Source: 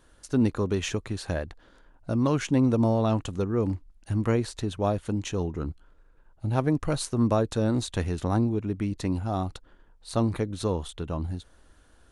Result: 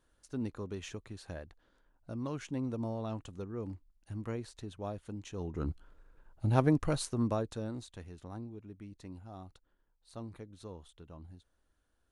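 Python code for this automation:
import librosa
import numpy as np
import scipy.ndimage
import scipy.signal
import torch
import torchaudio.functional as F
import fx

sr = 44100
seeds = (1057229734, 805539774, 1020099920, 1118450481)

y = fx.gain(x, sr, db=fx.line((5.3, -14.0), (5.7, -1.5), (6.64, -1.5), (7.42, -10.0), (7.99, -19.5)))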